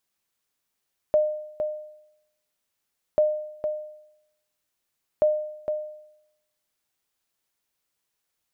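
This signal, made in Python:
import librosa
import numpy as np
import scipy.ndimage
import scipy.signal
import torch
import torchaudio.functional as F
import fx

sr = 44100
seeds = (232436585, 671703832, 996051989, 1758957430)

y = fx.sonar_ping(sr, hz=609.0, decay_s=0.8, every_s=2.04, pings=3, echo_s=0.46, echo_db=-7.5, level_db=-13.5)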